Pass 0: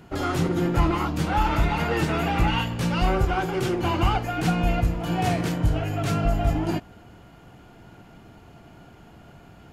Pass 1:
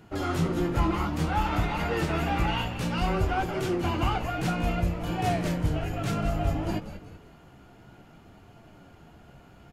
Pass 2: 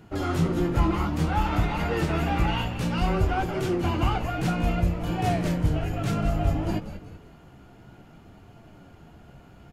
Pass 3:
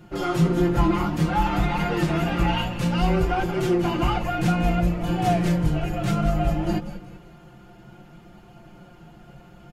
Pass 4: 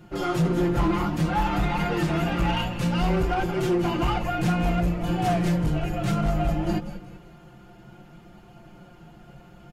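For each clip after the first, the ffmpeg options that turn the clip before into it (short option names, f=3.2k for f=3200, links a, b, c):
-filter_complex "[0:a]flanger=delay=8.8:depth=7:regen=55:speed=0.58:shape=triangular,asplit=2[a][b];[b]asplit=4[c][d][e][f];[c]adelay=188,afreqshift=-120,volume=-11dB[g];[d]adelay=376,afreqshift=-240,volume=-18.7dB[h];[e]adelay=564,afreqshift=-360,volume=-26.5dB[i];[f]adelay=752,afreqshift=-480,volume=-34.2dB[j];[g][h][i][j]amix=inputs=4:normalize=0[k];[a][k]amix=inputs=2:normalize=0"
-af "lowshelf=f=370:g=3.5"
-af "aecho=1:1:5.7:0.89"
-af "asoftclip=type=hard:threshold=-16.5dB,volume=-1dB"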